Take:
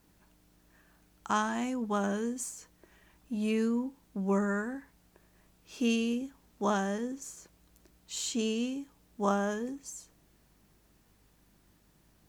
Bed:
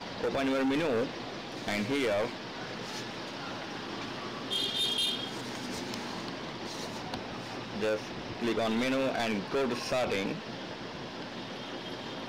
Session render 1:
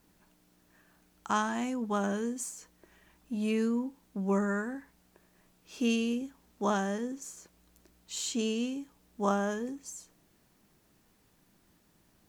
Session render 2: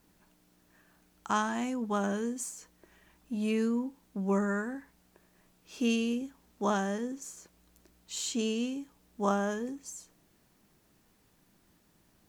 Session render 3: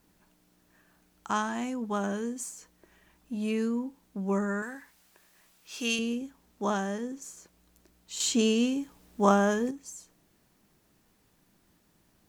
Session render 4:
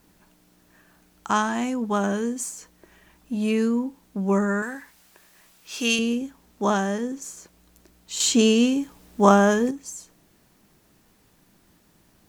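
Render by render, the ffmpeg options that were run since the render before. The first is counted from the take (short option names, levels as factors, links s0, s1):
-af "bandreject=f=50:t=h:w=4,bandreject=f=100:t=h:w=4,bandreject=f=150:t=h:w=4"
-af anull
-filter_complex "[0:a]asettb=1/sr,asplit=3[s0][s1][s2];[s0]atrim=end=4.624[s3];[s1]atrim=start=4.62:end=5.99,asetpts=PTS-STARTPTS,afade=t=in:d=0.004:c=qsin,afade=t=out:st=1.366:d=0.004:c=qsin,tiltshelf=f=750:g=-7.5[s4];[s2]atrim=start=5.986[s5];[s3][s4]acrossfade=d=0.004:c1=hsin:c2=qsin[s6];[s6][s5]acrossfade=d=0.004:c1=qsin:c2=hsin,asettb=1/sr,asplit=3[s7][s8][s9];[s7]atrim=end=8.204[s10];[s8]atrim=start=8.2:end=9.71,asetpts=PTS-STARTPTS,afade=t=in:d=0.004:c=qsin,afade=t=out:st=1.506:d=0.004:c=qsin,acontrast=71[s11];[s9]atrim=start=9.706[s12];[s10][s11]acrossfade=d=0.004:c1=hsin:c2=qsin[s13];[s13][s12]acrossfade=d=0.004:c1=qsin:c2=hsin"
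-af "volume=2.24,alimiter=limit=0.794:level=0:latency=1"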